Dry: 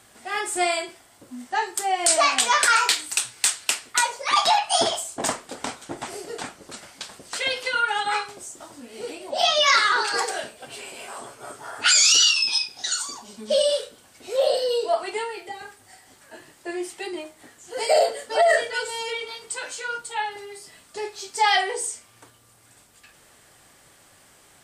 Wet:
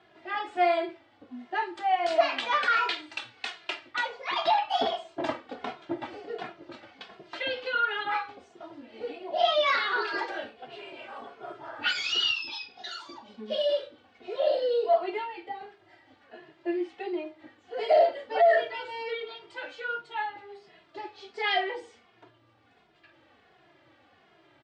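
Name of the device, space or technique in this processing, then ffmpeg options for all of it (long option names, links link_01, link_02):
barber-pole flanger into a guitar amplifier: -filter_complex "[0:a]asplit=2[link_01][link_02];[link_02]adelay=2.4,afreqshift=-1.4[link_03];[link_01][link_03]amix=inputs=2:normalize=1,asoftclip=type=tanh:threshold=-12.5dB,highpass=80,equalizer=frequency=180:width_type=q:width=4:gain=-4,equalizer=frequency=330:width_type=q:width=4:gain=9,equalizer=frequency=690:width_type=q:width=4:gain=5,lowpass=frequency=3600:width=0.5412,lowpass=frequency=3600:width=1.3066,volume=-2.5dB"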